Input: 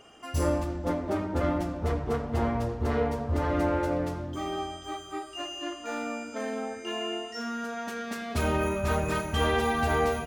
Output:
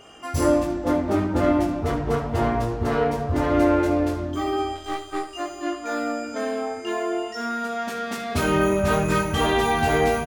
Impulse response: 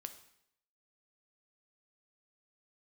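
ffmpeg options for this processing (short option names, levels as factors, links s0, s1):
-filter_complex "[0:a]asplit=3[s0][s1][s2];[s0]afade=t=out:st=4.74:d=0.02[s3];[s1]aeval=exprs='0.075*(cos(1*acos(clip(val(0)/0.075,-1,1)))-cos(1*PI/2))+0.00668*(cos(6*acos(clip(val(0)/0.075,-1,1)))-cos(6*PI/2))+0.00335*(cos(7*acos(clip(val(0)/0.075,-1,1)))-cos(7*PI/2))':c=same,afade=t=in:st=4.74:d=0.02,afade=t=out:st=5.33:d=0.02[s4];[s2]afade=t=in:st=5.33:d=0.02[s5];[s3][s4][s5]amix=inputs=3:normalize=0,aecho=1:1:20|71:0.668|0.251,volume=1.78"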